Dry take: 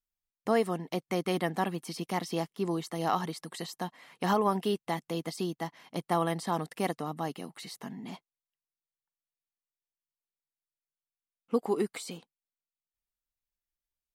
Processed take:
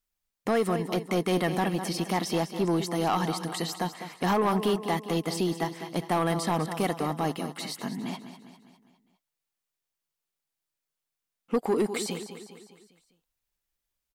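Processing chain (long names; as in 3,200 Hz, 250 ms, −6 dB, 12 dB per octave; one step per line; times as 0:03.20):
in parallel at 0 dB: brickwall limiter −24 dBFS, peak gain reduction 9 dB
on the sum: repeating echo 202 ms, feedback 51%, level −12 dB
soft clipping −19.5 dBFS, distortion −14 dB
level +1.5 dB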